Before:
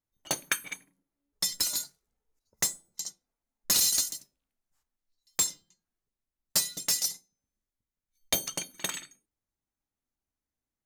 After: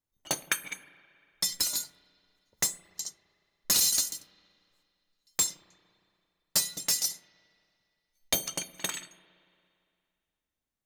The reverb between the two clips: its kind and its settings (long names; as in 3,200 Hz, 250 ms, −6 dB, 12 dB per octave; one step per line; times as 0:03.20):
spring reverb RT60 2.4 s, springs 33/57 ms, chirp 80 ms, DRR 17 dB